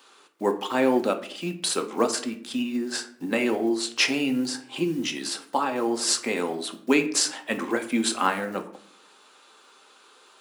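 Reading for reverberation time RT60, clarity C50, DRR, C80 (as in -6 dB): 0.60 s, 12.5 dB, 5.5 dB, 16.0 dB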